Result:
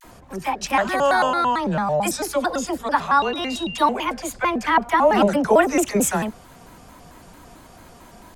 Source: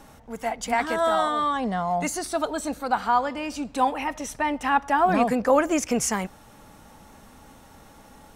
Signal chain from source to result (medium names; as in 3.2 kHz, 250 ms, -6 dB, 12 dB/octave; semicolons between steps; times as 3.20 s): phase dispersion lows, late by 46 ms, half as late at 630 Hz; 3.18–3.82 s: whistle 3.3 kHz -35 dBFS; vibrato with a chosen wave square 4.5 Hz, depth 250 cents; trim +4 dB